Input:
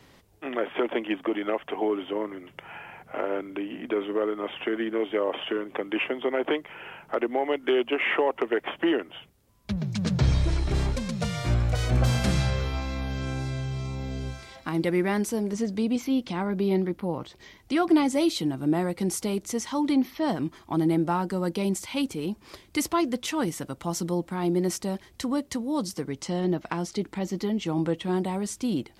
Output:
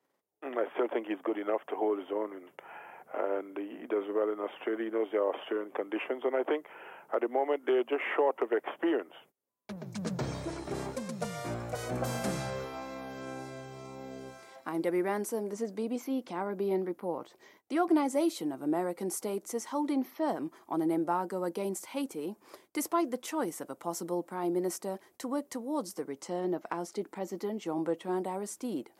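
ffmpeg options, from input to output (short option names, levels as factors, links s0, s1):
-filter_complex "[0:a]asettb=1/sr,asplit=3[s0][s1][s2];[s0]atrim=end=9.864[s3];[s1]atrim=start=9.86:end=12.65,asetpts=PTS-STARTPTS,afade=t=in:d=0.004:c=qsin,afade=t=out:st=2.786:d=0.004:c=qsin,bass=f=250:g=6,treble=f=4000:g=2[s4];[s2]atrim=start=12.646[s5];[s3][s4]acrossfade=d=0.004:c1=hsin:c2=qsin[s6];[s6][s5]acrossfade=d=0.004:c1=qsin:c2=hsin,agate=range=0.126:threshold=0.00251:ratio=16:detection=peak,highpass=400,equalizer=f=3500:t=o:w=2.2:g=-13"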